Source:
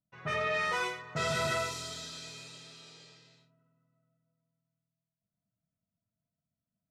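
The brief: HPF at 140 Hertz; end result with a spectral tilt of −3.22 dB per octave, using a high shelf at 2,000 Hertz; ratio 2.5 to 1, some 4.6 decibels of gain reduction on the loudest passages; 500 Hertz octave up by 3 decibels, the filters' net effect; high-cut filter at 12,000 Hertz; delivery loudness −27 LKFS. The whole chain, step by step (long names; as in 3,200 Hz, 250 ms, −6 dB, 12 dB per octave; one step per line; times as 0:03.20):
high-pass filter 140 Hz
low-pass filter 12,000 Hz
parametric band 500 Hz +4.5 dB
high-shelf EQ 2,000 Hz −3.5 dB
downward compressor 2.5 to 1, threshold −34 dBFS
level +10.5 dB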